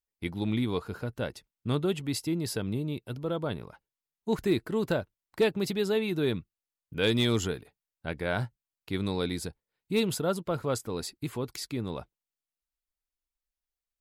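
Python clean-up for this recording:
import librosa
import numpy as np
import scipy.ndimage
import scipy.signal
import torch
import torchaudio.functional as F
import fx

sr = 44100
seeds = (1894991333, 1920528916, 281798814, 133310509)

y = fx.fix_declip(x, sr, threshold_db=-17.0)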